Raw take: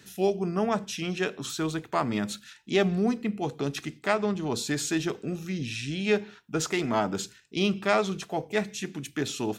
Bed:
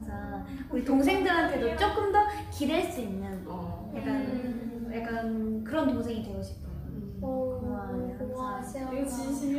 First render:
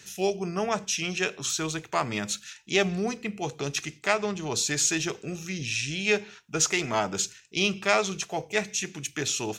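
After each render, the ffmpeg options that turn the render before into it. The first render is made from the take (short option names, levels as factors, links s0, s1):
-af "equalizer=f=250:t=o:w=0.67:g=-8,equalizer=f=2500:t=o:w=0.67:g=6,equalizer=f=6300:t=o:w=0.67:g=11"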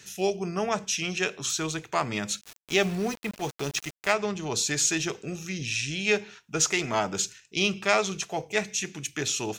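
-filter_complex "[0:a]asettb=1/sr,asplit=3[s0][s1][s2];[s0]atrim=end=2.414[s3];[s1]atrim=start=2.41:end=4.12,asetpts=PTS-STARTPTS,afade=t=in:d=0.004:c=qsin,afade=t=out:st=1.706:d=0.004:c=qsin,aeval=exprs='val(0)*gte(abs(val(0)),0.0158)':c=same[s4];[s2]atrim=start=4.116[s5];[s3][s4]acrossfade=d=0.004:c1=hsin:c2=qsin[s6];[s6][s5]acrossfade=d=0.004:c1=qsin:c2=hsin"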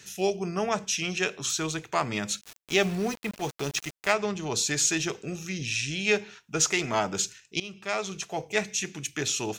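-filter_complex "[0:a]asplit=2[s0][s1];[s0]atrim=end=7.6,asetpts=PTS-STARTPTS,afade=t=out:st=7.596:d=0.004:c=hsin:silence=0.112202[s2];[s1]atrim=start=7.6,asetpts=PTS-STARTPTS,afade=t=in:d=0.89:silence=0.112202[s3];[s2][s3]concat=n=2:v=0:a=1"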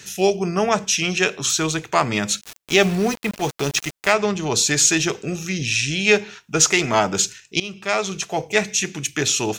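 -af "volume=2.66,alimiter=limit=0.891:level=0:latency=1"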